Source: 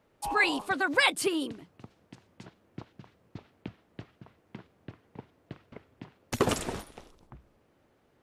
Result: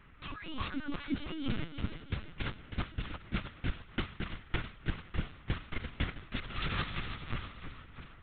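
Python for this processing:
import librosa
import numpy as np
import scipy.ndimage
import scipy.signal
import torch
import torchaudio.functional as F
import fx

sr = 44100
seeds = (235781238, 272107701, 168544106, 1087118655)

y = fx.envelope_flatten(x, sr, power=0.6)
y = fx.over_compress(y, sr, threshold_db=-41.0, ratio=-1.0)
y = fx.echo_feedback(y, sr, ms=330, feedback_pct=57, wet_db=-8.5)
y = fx.env_lowpass(y, sr, base_hz=1900.0, full_db=-35.0)
y = fx.brickwall_bandstop(y, sr, low_hz=390.0, high_hz=1000.0)
y = fx.lpc_vocoder(y, sr, seeds[0], excitation='pitch_kept', order=10)
y = y * 10.0 ** (6.0 / 20.0)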